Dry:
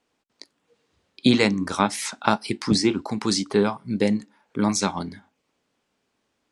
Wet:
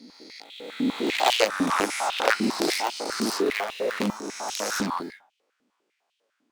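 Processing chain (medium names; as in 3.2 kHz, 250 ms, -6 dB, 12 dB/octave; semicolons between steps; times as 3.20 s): reverse spectral sustain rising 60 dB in 1.88 s; in parallel at -8 dB: sample-rate reducer 1.1 kHz, jitter 0%; on the sum: Chebyshev shaper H 3 -10 dB, 7 -20 dB, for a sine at 1.5 dBFS; step-sequenced high-pass 10 Hz 250–3000 Hz; trim -4 dB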